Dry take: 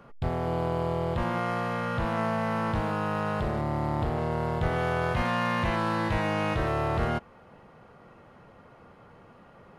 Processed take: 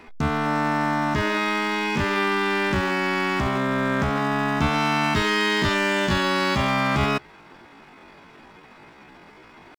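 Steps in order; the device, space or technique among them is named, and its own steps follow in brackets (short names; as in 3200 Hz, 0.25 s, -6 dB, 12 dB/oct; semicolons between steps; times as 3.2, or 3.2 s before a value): chipmunk voice (pitch shift +10 st); gain +5.5 dB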